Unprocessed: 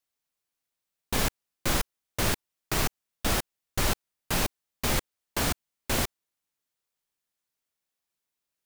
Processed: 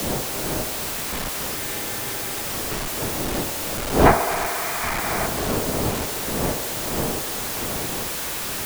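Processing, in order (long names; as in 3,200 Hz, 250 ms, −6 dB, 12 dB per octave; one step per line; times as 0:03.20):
sign of each sample alone
wind on the microphone 530 Hz −29 dBFS
gain on a spectral selection 0:04.06–0:05.27, 630–2,500 Hz +9 dB
on a send: delay with a band-pass on its return 70 ms, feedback 76%, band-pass 820 Hz, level −9.5 dB
on the sum: frozen spectrum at 0:01.57, 0.86 s
multiband upward and downward compressor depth 40%
level +4 dB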